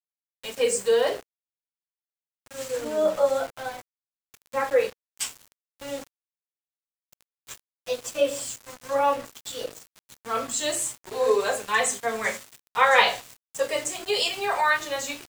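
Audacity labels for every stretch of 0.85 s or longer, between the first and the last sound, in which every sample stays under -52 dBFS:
1.230000	2.460000	silence
6.070000	7.130000	silence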